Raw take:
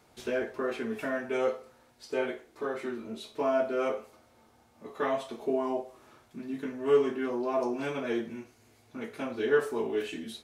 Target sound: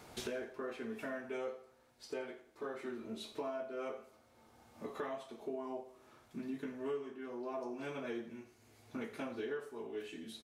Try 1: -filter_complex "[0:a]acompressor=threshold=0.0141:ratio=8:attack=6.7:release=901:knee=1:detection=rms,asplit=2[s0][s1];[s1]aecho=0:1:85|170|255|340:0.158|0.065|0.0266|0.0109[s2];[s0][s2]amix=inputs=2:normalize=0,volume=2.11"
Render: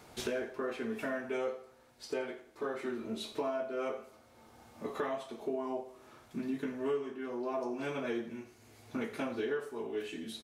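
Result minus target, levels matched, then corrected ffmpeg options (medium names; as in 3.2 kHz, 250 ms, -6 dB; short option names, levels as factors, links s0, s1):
compression: peak gain reduction -5.5 dB
-filter_complex "[0:a]acompressor=threshold=0.00668:ratio=8:attack=6.7:release=901:knee=1:detection=rms,asplit=2[s0][s1];[s1]aecho=0:1:85|170|255|340:0.158|0.065|0.0266|0.0109[s2];[s0][s2]amix=inputs=2:normalize=0,volume=2.11"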